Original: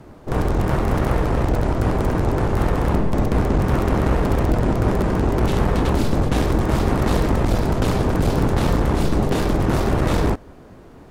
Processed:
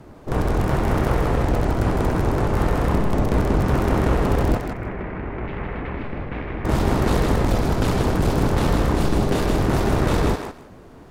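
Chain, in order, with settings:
0:04.57–0:06.65: transistor ladder low-pass 2,500 Hz, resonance 55%
feedback echo with a high-pass in the loop 157 ms, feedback 19%, high-pass 620 Hz, level −4 dB
level −1 dB

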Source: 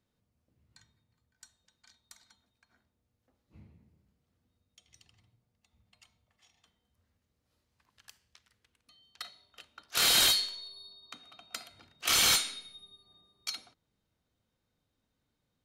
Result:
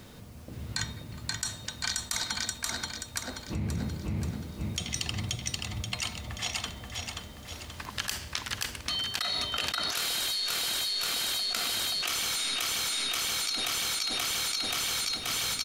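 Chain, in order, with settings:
on a send: repeating echo 530 ms, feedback 46%, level −4 dB
on the sum: envelope flattener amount 100%
level −8 dB

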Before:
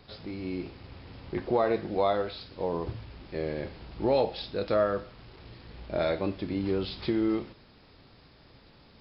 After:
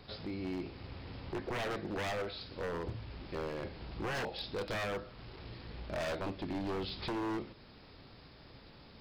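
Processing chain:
in parallel at +1 dB: downward compressor 8 to 1, threshold −41 dBFS, peak gain reduction 19.5 dB
on the sum: wave folding −25 dBFS
level −6 dB

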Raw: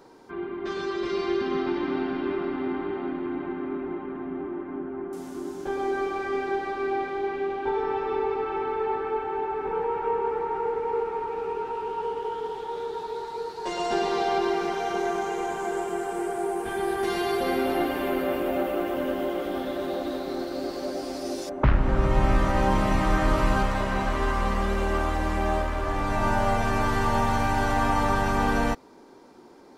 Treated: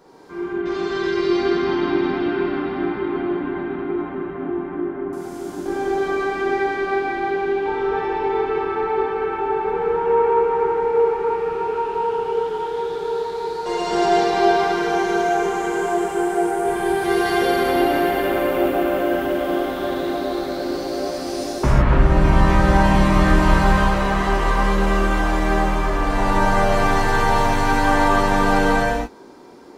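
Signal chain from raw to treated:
reverb whose tail is shaped and stops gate 350 ms flat, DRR −7.5 dB
level −1 dB

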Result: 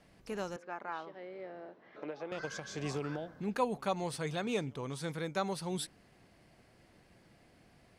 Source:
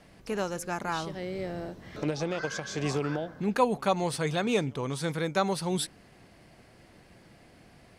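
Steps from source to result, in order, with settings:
0:00.56–0:02.32: band-pass filter 390–2,100 Hz
level −7.5 dB

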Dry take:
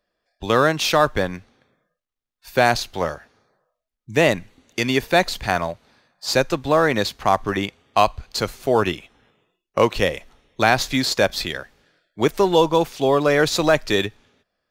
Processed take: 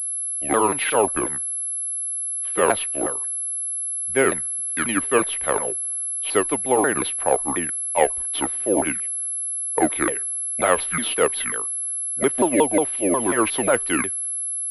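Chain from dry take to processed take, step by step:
pitch shifter swept by a sawtooth −9.5 semitones, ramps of 180 ms
three-way crossover with the lows and the highs turned down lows −14 dB, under 250 Hz, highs −20 dB, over 3,500 Hz
switching amplifier with a slow clock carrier 11,000 Hz

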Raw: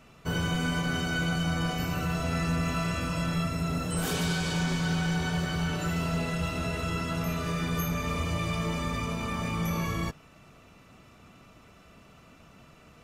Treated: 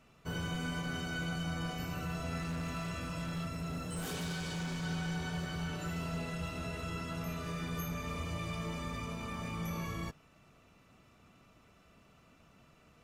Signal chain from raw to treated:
0:02.37–0:04.83: hard clipping −25.5 dBFS, distortion −21 dB
level −8.5 dB

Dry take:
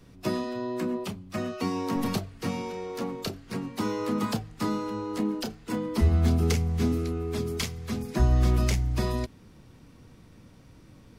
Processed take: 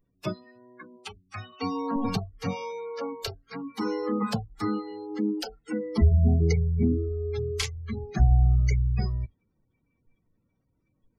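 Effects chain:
gate on every frequency bin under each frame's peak −25 dB strong
noise reduction from a noise print of the clip's start 24 dB
level +2.5 dB

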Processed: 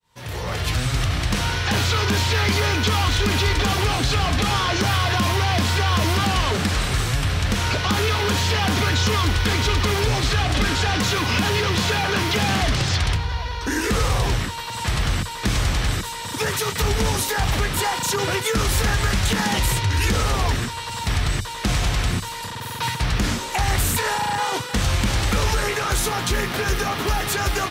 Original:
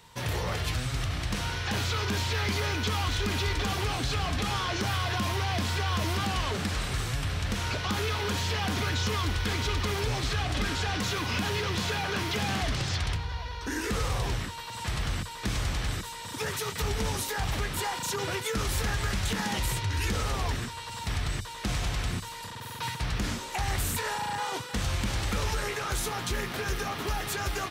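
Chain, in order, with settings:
fade in at the beginning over 0.85 s
level +9 dB

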